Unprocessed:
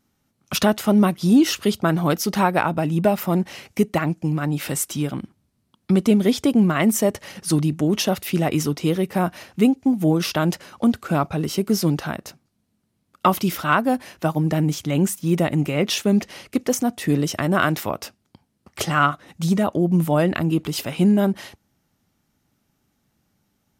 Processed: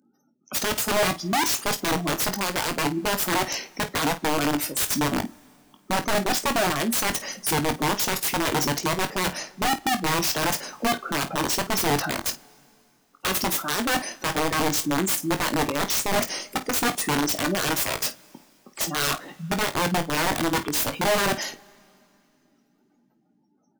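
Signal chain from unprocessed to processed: spectral gate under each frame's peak -15 dB strong; HPF 210 Hz 24 dB/oct; resonant high shelf 4700 Hz +10.5 dB, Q 1.5; reverse; compressor 6:1, threshold -28 dBFS, peak gain reduction 17.5 dB; reverse; wrapped overs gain 26 dB; on a send: early reflections 21 ms -9 dB, 51 ms -14.5 dB; on the sum: two-slope reverb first 0.21 s, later 2.8 s, from -18 dB, DRR 17 dB; gain +7.5 dB

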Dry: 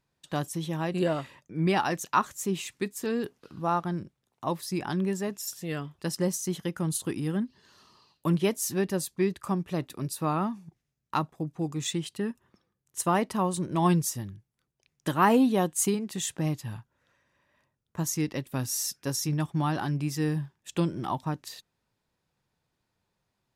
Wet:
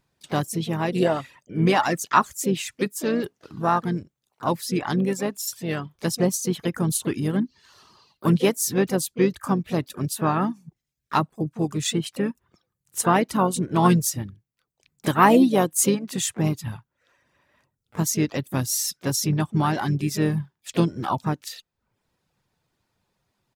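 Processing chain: reverb removal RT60 0.54 s; harmoniser -5 st -16 dB, +4 st -16 dB, +5 st -15 dB; gain +6 dB

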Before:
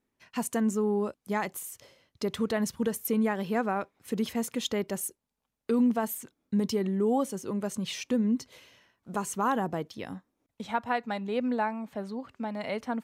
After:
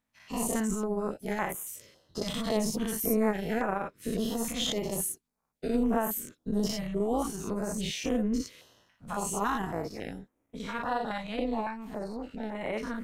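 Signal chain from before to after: spectral dilation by 0.12 s; AM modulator 220 Hz, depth 55%; stepped notch 3.6 Hz 390–4500 Hz; gain -1.5 dB

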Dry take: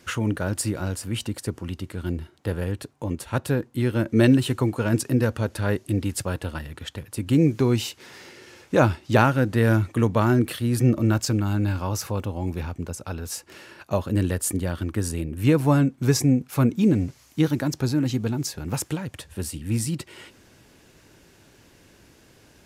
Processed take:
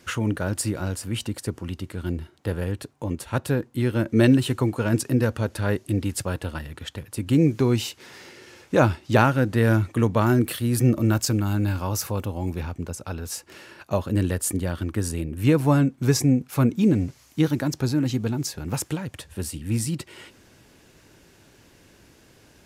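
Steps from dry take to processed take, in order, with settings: 10.26–12.53 high shelf 10000 Hz +9 dB

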